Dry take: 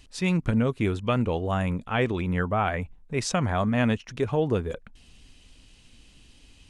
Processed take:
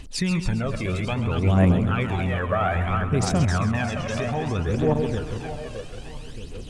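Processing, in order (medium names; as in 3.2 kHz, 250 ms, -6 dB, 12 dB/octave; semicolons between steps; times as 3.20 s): backward echo that repeats 309 ms, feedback 63%, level -8 dB; in parallel at +2 dB: compression, threshold -31 dBFS, peak gain reduction 12.5 dB; on the sum: peak limiter -16 dBFS, peak gain reduction 8 dB; phaser 0.61 Hz, delay 1.9 ms, feedback 65%; on a send: two-band feedback delay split 590 Hz, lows 191 ms, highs 132 ms, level -11 dB; on the sum: trim -1.5 dB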